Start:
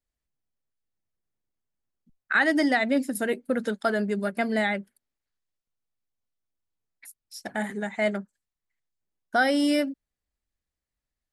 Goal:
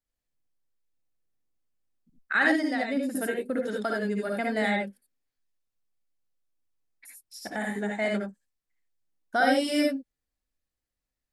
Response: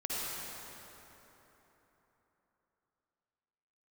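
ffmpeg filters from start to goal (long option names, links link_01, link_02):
-filter_complex "[1:a]atrim=start_sample=2205,atrim=end_sample=3969,asetrate=41895,aresample=44100[link_01];[0:a][link_01]afir=irnorm=-1:irlink=0,asettb=1/sr,asplit=3[link_02][link_03][link_04];[link_02]atrim=end=2.554[link_05];[link_03]atrim=start=2.55:end=4.57,asetpts=PTS-STARTPTS,afade=type=in:duration=0.004:curve=qsin,afade=type=out:start_time=2.016:duration=0.004:curve=qsin,acompressor=threshold=-25dB:ratio=5[link_06];[link_04]atrim=start=4.566[link_07];[link_05][link_06]acrossfade=duration=0.004:curve1=hsin:curve2=qsin[link_08];[link_08][link_07]acrossfade=duration=0.004:curve1=qsin:curve2=hsin"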